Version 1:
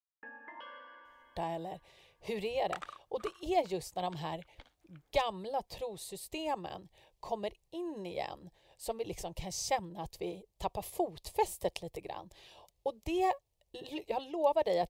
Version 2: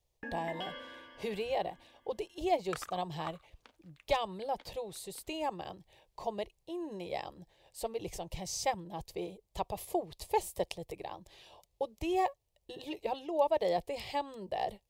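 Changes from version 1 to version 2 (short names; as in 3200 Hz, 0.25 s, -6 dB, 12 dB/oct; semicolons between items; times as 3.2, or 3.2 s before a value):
speech: entry -1.05 s; first sound: remove band-pass 1100 Hz, Q 1.5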